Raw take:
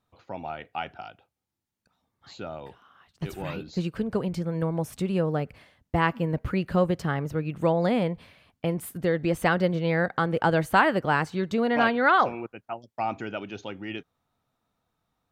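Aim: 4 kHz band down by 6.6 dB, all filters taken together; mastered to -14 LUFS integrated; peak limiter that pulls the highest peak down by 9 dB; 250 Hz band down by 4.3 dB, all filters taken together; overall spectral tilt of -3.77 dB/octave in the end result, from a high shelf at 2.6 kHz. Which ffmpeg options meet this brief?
-af "equalizer=f=250:t=o:g=-7,highshelf=f=2600:g=-6,equalizer=f=4000:t=o:g=-4.5,volume=7.5,alimiter=limit=0.944:level=0:latency=1"

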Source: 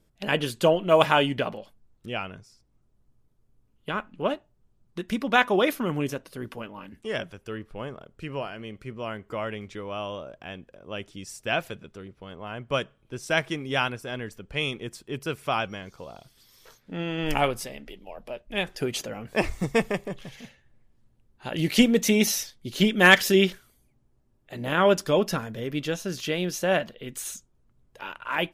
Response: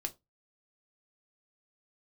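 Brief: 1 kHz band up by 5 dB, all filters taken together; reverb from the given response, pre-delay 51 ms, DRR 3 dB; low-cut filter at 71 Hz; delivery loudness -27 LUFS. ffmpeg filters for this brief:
-filter_complex "[0:a]highpass=71,equalizer=f=1000:t=o:g=6.5,asplit=2[s0][s1];[1:a]atrim=start_sample=2205,adelay=51[s2];[s1][s2]afir=irnorm=-1:irlink=0,volume=0.708[s3];[s0][s3]amix=inputs=2:normalize=0,volume=0.596"

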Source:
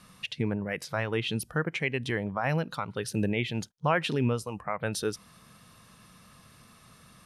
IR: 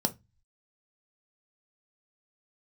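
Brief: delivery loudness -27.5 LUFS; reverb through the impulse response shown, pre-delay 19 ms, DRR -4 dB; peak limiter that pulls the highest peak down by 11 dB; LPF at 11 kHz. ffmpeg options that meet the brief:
-filter_complex "[0:a]lowpass=11000,alimiter=limit=0.0631:level=0:latency=1,asplit=2[s0][s1];[1:a]atrim=start_sample=2205,adelay=19[s2];[s1][s2]afir=irnorm=-1:irlink=0,volume=0.75[s3];[s0][s3]amix=inputs=2:normalize=0,volume=0.708"

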